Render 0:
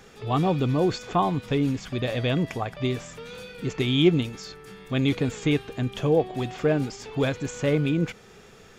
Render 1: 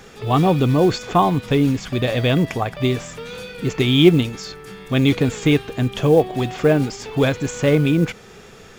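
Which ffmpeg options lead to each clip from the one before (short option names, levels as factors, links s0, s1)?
-af "acrusher=bits=8:mode=log:mix=0:aa=0.000001,volume=2.24"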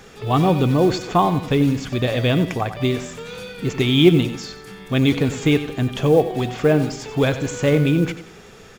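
-af "aecho=1:1:92|184|276|368:0.237|0.0901|0.0342|0.013,volume=0.891"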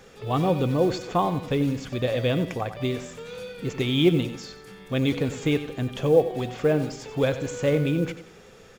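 -af "equalizer=f=520:w=5.7:g=7.5,volume=0.447"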